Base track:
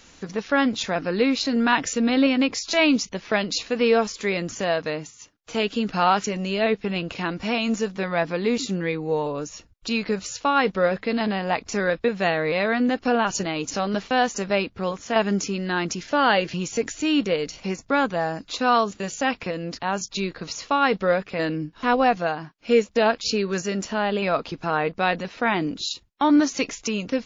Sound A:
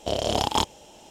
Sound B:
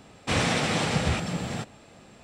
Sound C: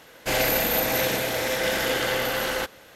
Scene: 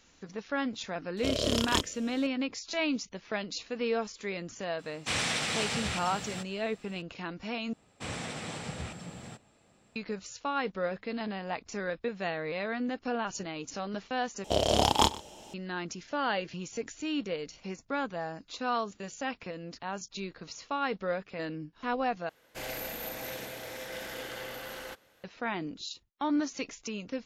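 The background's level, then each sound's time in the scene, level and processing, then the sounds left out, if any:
base track -11.5 dB
1.17 s: add A -3 dB + Butterworth band-stop 810 Hz, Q 1.8
4.79 s: add B -6.5 dB + tilt shelf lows -6 dB, about 1.2 kHz
7.73 s: replace with B -13.5 dB + peaking EQ 7.8 kHz +6 dB 0.23 oct
14.44 s: replace with A -0.5 dB + multi-tap echo 41/123 ms -18/-19.5 dB
22.29 s: replace with C -15.5 dB

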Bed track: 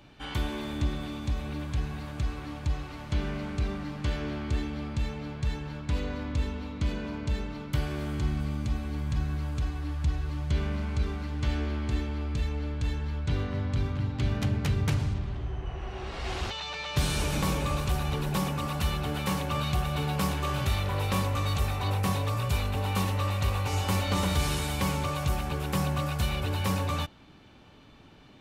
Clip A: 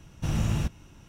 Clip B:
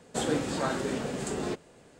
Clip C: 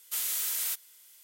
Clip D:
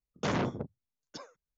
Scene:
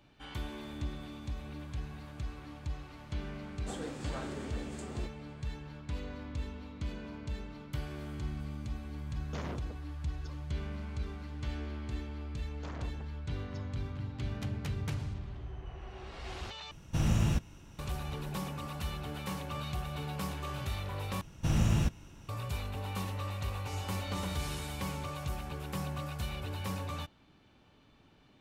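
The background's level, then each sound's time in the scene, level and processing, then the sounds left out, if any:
bed track -9 dB
3.52 s: add B -12.5 dB
9.10 s: add D -11 dB
12.40 s: add D -11.5 dB + transformer saturation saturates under 1.1 kHz
16.71 s: replace with A -1.5 dB
21.21 s: replace with A -1 dB
not used: C

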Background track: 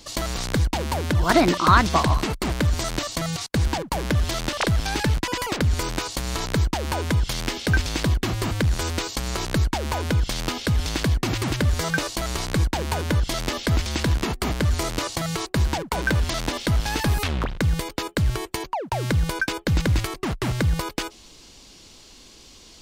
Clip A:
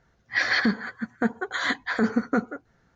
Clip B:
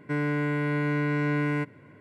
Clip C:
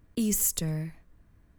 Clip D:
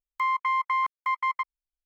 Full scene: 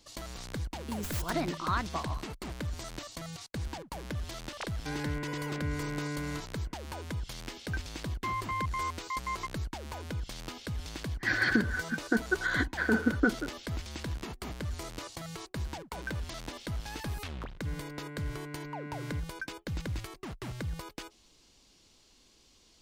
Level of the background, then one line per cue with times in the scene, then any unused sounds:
background track -15 dB
0.71 s: add C -11 dB + tracing distortion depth 0.14 ms
4.76 s: add B -10 dB
8.04 s: add D -9 dB
10.90 s: add A -9.5 dB + small resonant body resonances 330/1500 Hz, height 17 dB
17.56 s: add B -16.5 dB

